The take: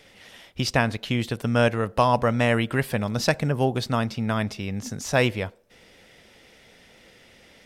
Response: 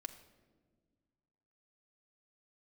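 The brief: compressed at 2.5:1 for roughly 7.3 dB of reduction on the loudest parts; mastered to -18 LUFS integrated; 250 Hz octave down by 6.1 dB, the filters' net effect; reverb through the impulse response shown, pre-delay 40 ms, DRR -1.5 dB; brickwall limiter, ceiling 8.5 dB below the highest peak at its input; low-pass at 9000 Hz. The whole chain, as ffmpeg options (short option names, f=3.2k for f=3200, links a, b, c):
-filter_complex "[0:a]lowpass=9k,equalizer=f=250:t=o:g=-7.5,acompressor=threshold=-27dB:ratio=2.5,alimiter=limit=-21dB:level=0:latency=1,asplit=2[a][b];[1:a]atrim=start_sample=2205,adelay=40[c];[b][c]afir=irnorm=-1:irlink=0,volume=5dB[d];[a][d]amix=inputs=2:normalize=0,volume=11dB"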